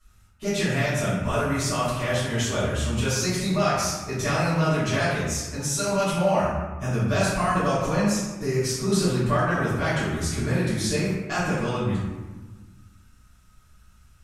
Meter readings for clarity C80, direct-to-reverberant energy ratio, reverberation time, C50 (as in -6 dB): 2.0 dB, -13.5 dB, 1.3 s, -1.0 dB